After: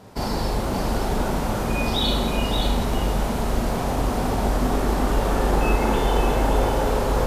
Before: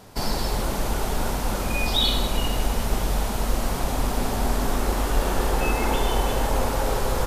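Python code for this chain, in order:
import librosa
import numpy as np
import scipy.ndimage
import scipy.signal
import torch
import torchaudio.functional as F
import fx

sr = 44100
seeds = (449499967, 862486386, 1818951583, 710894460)

y = fx.highpass(x, sr, hz=150.0, slope=6)
y = fx.tilt_eq(y, sr, slope=-2.0)
y = fx.echo_multitap(y, sr, ms=(40, 573), db=(-4.0, -4.5))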